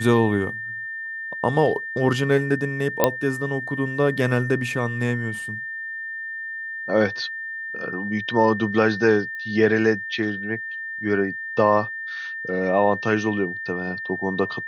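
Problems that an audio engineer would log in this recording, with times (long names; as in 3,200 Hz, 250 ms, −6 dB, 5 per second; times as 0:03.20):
whistle 1,800 Hz −29 dBFS
0:03.04: click −2 dBFS
0:09.35: click −25 dBFS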